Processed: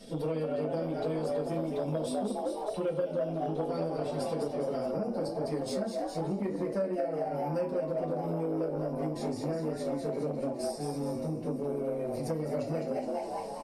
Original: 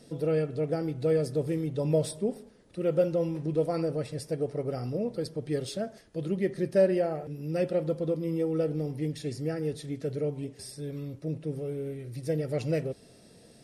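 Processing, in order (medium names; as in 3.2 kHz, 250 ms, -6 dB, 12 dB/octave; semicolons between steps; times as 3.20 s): bass shelf 220 Hz -3.5 dB; frequency-shifting echo 207 ms, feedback 52%, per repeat +100 Hz, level -5 dB; reverberation RT60 0.30 s, pre-delay 3 ms, DRR -4.5 dB; compression 6:1, threshold -29 dBFS, peak gain reduction 18.5 dB; peaking EQ 3.3 kHz +6 dB 0.44 oct, from 4.91 s -8 dB; transformer saturation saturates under 410 Hz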